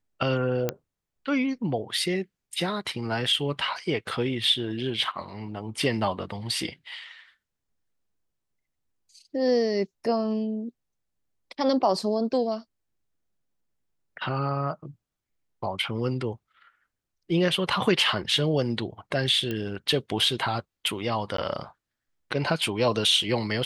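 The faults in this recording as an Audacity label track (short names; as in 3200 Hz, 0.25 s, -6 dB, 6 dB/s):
0.690000	0.690000	pop -11 dBFS
19.510000	19.510000	pop -17 dBFS
21.370000	21.380000	gap 13 ms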